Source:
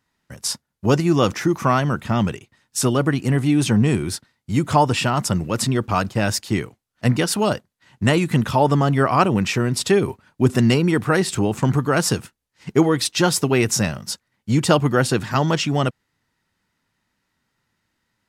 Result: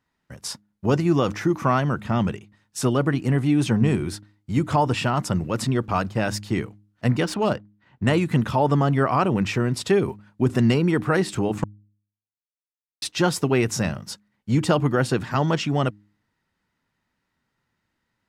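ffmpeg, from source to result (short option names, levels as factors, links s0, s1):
-filter_complex "[0:a]asettb=1/sr,asplit=3[s0][s1][s2];[s0]atrim=end=7.234[s3];[s1]atrim=start=7.23:end=8.07,asetpts=PTS-STARTPTS,afade=t=in:d=0.004:c=qsin,afade=t=out:st=0.836:d=0.004:c=qsin,adynamicsmooth=sensitivity=4.5:basefreq=3400[s4];[s2]atrim=start=8.066[s5];[s3][s4]acrossfade=d=0.004:c1=hsin:c2=qsin[s6];[s6][s5]acrossfade=d=0.004:c1=qsin:c2=hsin,asplit=3[s7][s8][s9];[s7]atrim=end=11.64,asetpts=PTS-STARTPTS,afade=t=out:st=11.636:d=0.004:c=hsin[s10];[s8]atrim=start=11.64:end=13.02,asetpts=PTS-STARTPTS,volume=0[s11];[s9]atrim=start=13.02,asetpts=PTS-STARTPTS,afade=t=in:d=0.004:c=hsin[s12];[s10][s11][s12]concat=n=3:v=0:a=1,highshelf=f=3900:g=-8,bandreject=f=103.2:t=h:w=4,bandreject=f=206.4:t=h:w=4,bandreject=f=309.6:t=h:w=4,alimiter=level_in=2:limit=0.891:release=50:level=0:latency=1,volume=0.398"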